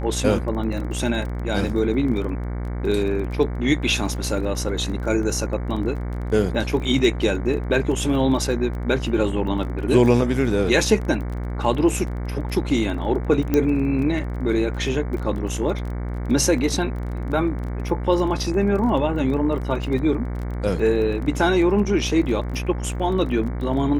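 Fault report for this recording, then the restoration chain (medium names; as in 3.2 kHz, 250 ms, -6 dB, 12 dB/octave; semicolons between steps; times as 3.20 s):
buzz 60 Hz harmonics 38 -27 dBFS
crackle 22 per s -30 dBFS
13.54 s: pop -8 dBFS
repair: de-click; de-hum 60 Hz, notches 38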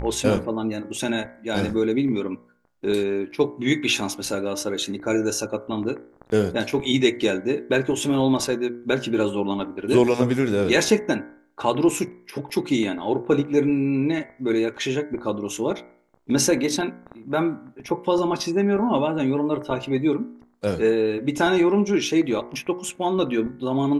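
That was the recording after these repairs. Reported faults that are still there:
nothing left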